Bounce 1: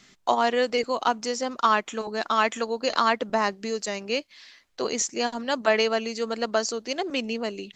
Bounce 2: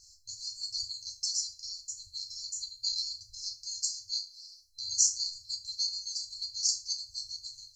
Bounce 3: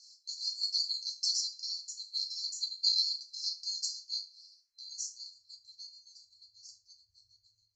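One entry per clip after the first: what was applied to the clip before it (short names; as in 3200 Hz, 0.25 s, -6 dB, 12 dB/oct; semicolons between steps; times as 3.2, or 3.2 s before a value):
FDN reverb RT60 0.34 s, low-frequency decay 0.75×, high-frequency decay 0.95×, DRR -1.5 dB; FFT band-reject 110–4100 Hz
band-pass sweep 4000 Hz -> 340 Hz, 3.64–7.14; gain +5.5 dB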